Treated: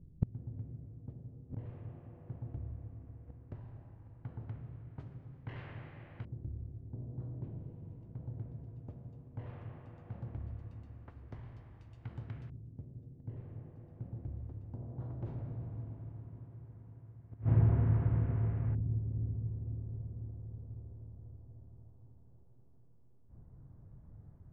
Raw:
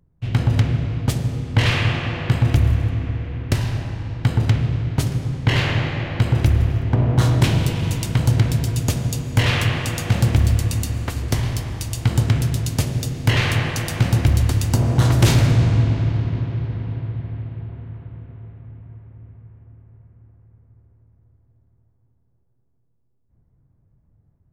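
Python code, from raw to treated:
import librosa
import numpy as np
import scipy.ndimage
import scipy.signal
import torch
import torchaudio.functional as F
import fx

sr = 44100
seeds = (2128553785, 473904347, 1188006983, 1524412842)

y = fx.filter_lfo_lowpass(x, sr, shape='saw_up', hz=0.16, low_hz=320.0, high_hz=2000.0, q=0.86)
y = fx.gate_flip(y, sr, shuts_db=-21.0, range_db=-32)
y = y * librosa.db_to_amplitude(5.5)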